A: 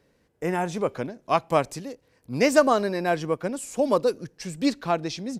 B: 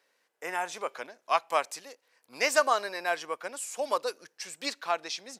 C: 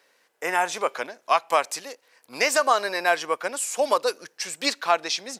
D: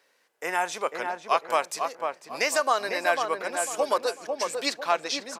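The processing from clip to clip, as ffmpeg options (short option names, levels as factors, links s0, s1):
-af "highpass=890"
-af "alimiter=limit=0.15:level=0:latency=1:release=195,volume=2.82"
-filter_complex "[0:a]asplit=2[s0][s1];[s1]adelay=498,lowpass=f=1300:p=1,volume=0.668,asplit=2[s2][s3];[s3]adelay=498,lowpass=f=1300:p=1,volume=0.39,asplit=2[s4][s5];[s5]adelay=498,lowpass=f=1300:p=1,volume=0.39,asplit=2[s6][s7];[s7]adelay=498,lowpass=f=1300:p=1,volume=0.39,asplit=2[s8][s9];[s9]adelay=498,lowpass=f=1300:p=1,volume=0.39[s10];[s0][s2][s4][s6][s8][s10]amix=inputs=6:normalize=0,volume=0.668"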